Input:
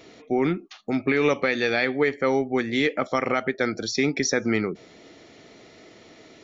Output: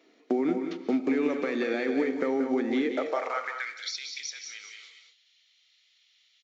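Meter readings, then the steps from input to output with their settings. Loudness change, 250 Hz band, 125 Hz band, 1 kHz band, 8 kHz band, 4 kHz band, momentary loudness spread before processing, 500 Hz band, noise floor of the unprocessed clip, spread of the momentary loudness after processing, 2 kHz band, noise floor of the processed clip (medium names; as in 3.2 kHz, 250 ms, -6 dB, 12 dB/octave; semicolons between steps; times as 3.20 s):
-5.0 dB, -3.0 dB, under -15 dB, -6.0 dB, no reading, -6.5 dB, 6 LU, -5.5 dB, -51 dBFS, 11 LU, -9.5 dB, -66 dBFS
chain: block-companded coder 5-bit; peak limiter -14.5 dBFS, peak gain reduction 5 dB; compression 5:1, threshold -30 dBFS, peak gain reduction 10.5 dB; peaking EQ 81 Hz -14 dB 0.75 oct; delay 183 ms -8 dB; gate -40 dBFS, range -21 dB; resampled via 16 kHz; high-pass sweep 270 Hz -> 3.3 kHz, 2.80–3.84 s; treble shelf 3.8 kHz -9.5 dB; gated-style reverb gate 260 ms rising, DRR 8.5 dB; tape noise reduction on one side only encoder only; trim +1.5 dB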